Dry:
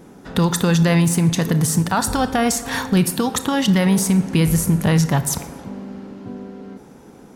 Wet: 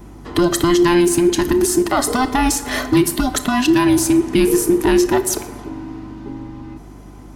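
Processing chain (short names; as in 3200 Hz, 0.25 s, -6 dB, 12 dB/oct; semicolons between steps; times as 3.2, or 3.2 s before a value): band inversion scrambler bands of 500 Hz; hum 50 Hz, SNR 23 dB; gain +2 dB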